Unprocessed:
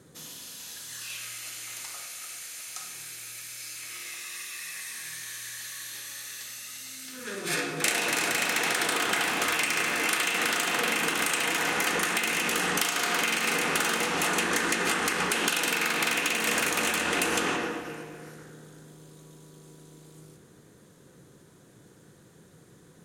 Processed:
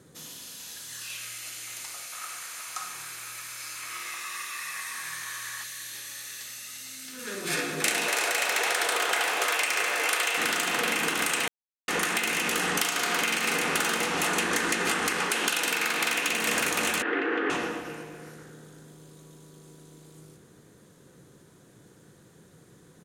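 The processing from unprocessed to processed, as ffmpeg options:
-filter_complex "[0:a]asettb=1/sr,asplit=3[a][b][c];[a]atrim=end=2.124[d];[b]atrim=start=2.12:end=5.64,asetpts=PTS-STARTPTS,afade=t=in:d=0.004:c=qsin,afade=t=out:st=3.516:d=0.004:c=qsin,equalizer=f=1.1k:w=1.3:g=13.5[e];[c]atrim=start=5.636[f];[d][e]acrossfade=d=0.004:c1=hsin:c2=qsin[g];[g][f]acrossfade=d=0.004:c1=qsin:c2=hsin,asplit=2[h][i];[i]afade=t=in:st=6.77:d=0.01,afade=t=out:st=7.41:d=0.01,aecho=0:1:410|820|1230|1640|2050|2460|2870|3280|3690|4100|4510|4920:0.707946|0.601754|0.511491|0.434767|0.369552|0.314119|0.267001|0.226951|0.192909|0.163972|0.139376|0.11847[j];[h][j]amix=inputs=2:normalize=0,asettb=1/sr,asplit=3[k][l][m];[k]atrim=end=8.084[n];[l]atrim=start=8.08:end=10.38,asetpts=PTS-STARTPTS,afade=t=in:d=0.004:c=qsin,afade=t=out:st=2.296:d=0.004:c=qsin,lowshelf=f=330:t=q:w=1.5:g=-14[o];[m]atrim=start=10.376[p];[n][o]acrossfade=d=0.004:c1=hsin:c2=qsin[q];[q][p]acrossfade=d=0.004:c1=qsin:c2=hsin,asettb=1/sr,asplit=3[r][s][t];[r]atrim=end=15.194[u];[s]atrim=start=15.19:end=16.27,asetpts=PTS-STARTPTS,afade=t=in:d=0.004:c=qsin,afade=t=out:st=1.076:d=0.004:c=qsin,highpass=f=260:p=1[v];[t]atrim=start=16.266[w];[u][v]acrossfade=d=0.004:c1=hsin:c2=qsin[x];[x][w]acrossfade=d=0.004:c1=qsin:c2=hsin,asettb=1/sr,asplit=3[y][z][aa];[y]atrim=end=17.024[ab];[z]atrim=start=17.02:end=17.5,asetpts=PTS-STARTPTS,afade=t=in:d=0.004:c=qsin,afade=t=out:st=0.476:d=0.004:c=qsin,highpass=f=290:w=0.5412,highpass=f=290:w=1.3066,equalizer=f=290:t=q:w=4:g=7,equalizer=f=420:t=q:w=4:g=6,equalizer=f=610:t=q:w=4:g=-7,equalizer=f=940:t=q:w=4:g=-6,equalizer=f=1.7k:t=q:w=4:g=4,equalizer=f=2.5k:t=q:w=4:g=-6,lowpass=f=2.5k:w=0.5412,lowpass=f=2.5k:w=1.3066[ac];[aa]atrim=start=17.496[ad];[ab][ac]acrossfade=d=0.004:c1=hsin:c2=qsin[ae];[ae][ad]acrossfade=d=0.004:c1=qsin:c2=hsin,asplit=3[af][ag][ah];[af]atrim=end=11.48,asetpts=PTS-STARTPTS,afade=t=out:st=11.476:d=0.004:c=hsin[ai];[ag]atrim=start=11.48:end=11.88,asetpts=PTS-STARTPTS,volume=0[aj];[ah]atrim=start=11.88,asetpts=PTS-STARTPTS,afade=t=in:d=0.004:c=hsin[ak];[ai][aj][ak]concat=n=3:v=0:a=1"

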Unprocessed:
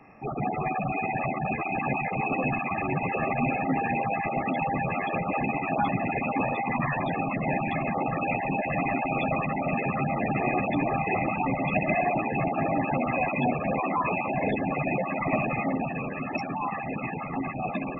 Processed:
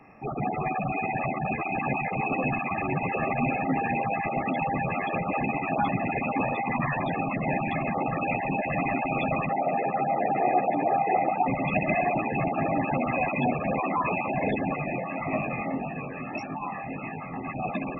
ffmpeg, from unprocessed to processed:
-filter_complex "[0:a]asettb=1/sr,asplit=3[a][b][c];[a]atrim=end=9.494[d];[b]atrim=start=9.49:end=11.48,asetpts=PTS-STARTPTS,afade=t=in:d=0.004:c=qsin,afade=t=out:st=1.986:d=0.004:c=qsin,highpass=230,equalizer=f=240:t=q:w=4:g=-4,equalizer=f=480:t=q:w=4:g=4,equalizer=f=750:t=q:w=4:g=8,equalizer=f=1.1k:t=q:w=4:g=-8,lowpass=f=2.1k:w=0.5412,lowpass=f=2.1k:w=1.3066[e];[c]atrim=start=11.476[f];[d][e]acrossfade=d=0.004:c1=hsin:c2=qsin[g];[g][f]acrossfade=d=0.004:c1=qsin:c2=hsin,asettb=1/sr,asplit=3[h][i][j];[h]atrim=end=14.764[k];[i]atrim=start=14.76:end=17.48,asetpts=PTS-STARTPTS,afade=t=in:d=0.004:c=qsin,afade=t=out:st=2.716:d=0.004:c=qsin,flanger=delay=19:depth=4.9:speed=1.7[l];[j]atrim=start=17.476[m];[k][l]acrossfade=d=0.004:c1=hsin:c2=qsin[n];[n][m]acrossfade=d=0.004:c1=qsin:c2=hsin"

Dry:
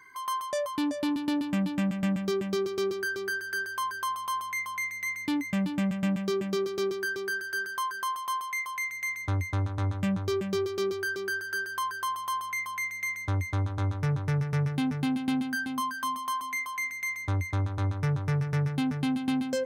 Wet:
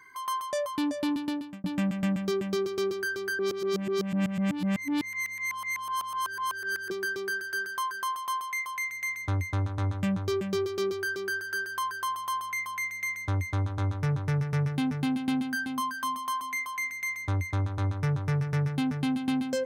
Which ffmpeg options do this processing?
-filter_complex "[0:a]asplit=4[a][b][c][d];[a]atrim=end=1.64,asetpts=PTS-STARTPTS,afade=t=out:st=1.17:d=0.47[e];[b]atrim=start=1.64:end=3.392,asetpts=PTS-STARTPTS,afade=t=in:d=0.004:c=hsin[f];[c]atrim=start=3.388:end=6.902,asetpts=PTS-STARTPTS,areverse[g];[d]atrim=start=6.898[h];[e][f]concat=n=2:v=0:a=1[i];[i][g]acrossfade=d=0.004:c1=hsin:c2=hsin[j];[j][h]acrossfade=d=0.004:c1=hsin:c2=hsin"

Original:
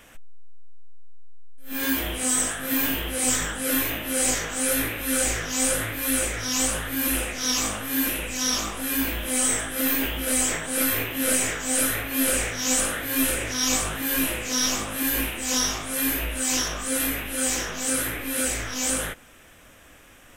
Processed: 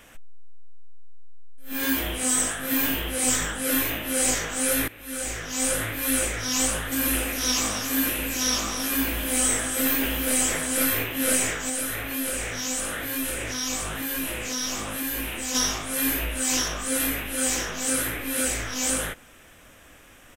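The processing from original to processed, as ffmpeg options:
-filter_complex "[0:a]asplit=3[a][b][c];[a]afade=t=out:st=6.91:d=0.02[d];[b]aecho=1:1:274:0.376,afade=t=in:st=6.91:d=0.02,afade=t=out:st=10.87:d=0.02[e];[c]afade=t=in:st=10.87:d=0.02[f];[d][e][f]amix=inputs=3:normalize=0,asettb=1/sr,asplit=3[g][h][i];[g]atrim=end=11.694[j];[h]atrim=start=11.69:end=15.55,asetpts=PTS-STARTPTS,afade=t=in:d=0.004:c=qsin,afade=t=out:st=3.856:d=0.004:c=qsin,acompressor=threshold=-27dB:ratio=2.5:attack=3.2:release=140:knee=1:detection=peak[k];[i]atrim=start=15.546[l];[j][k]acrossfade=d=0.004:c1=hsin:c2=qsin[m];[m][l]acrossfade=d=0.004:c1=qsin:c2=hsin,asplit=2[n][o];[n]atrim=end=4.88,asetpts=PTS-STARTPTS,afade=t=out:st=4.876:d=0.004:c=hsin:silence=0.133352[p];[o]atrim=start=4.88,asetpts=PTS-STARTPTS,afade=t=in:d=0.99:silence=0.133352[q];[p][q]concat=n=2:v=0:a=1"

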